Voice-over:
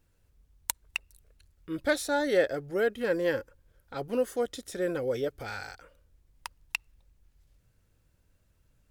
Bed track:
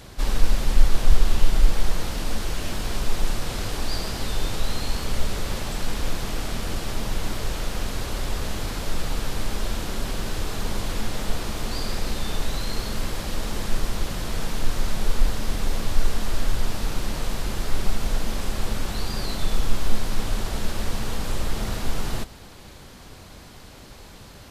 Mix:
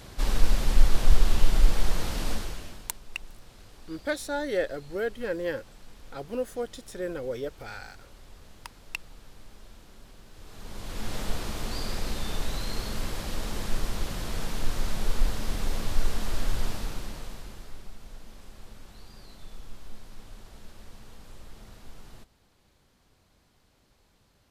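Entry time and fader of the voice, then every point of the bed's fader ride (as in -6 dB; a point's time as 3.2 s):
2.20 s, -3.0 dB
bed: 2.31 s -2.5 dB
2.99 s -23 dB
10.3 s -23 dB
11.13 s -4.5 dB
16.67 s -4.5 dB
17.9 s -21 dB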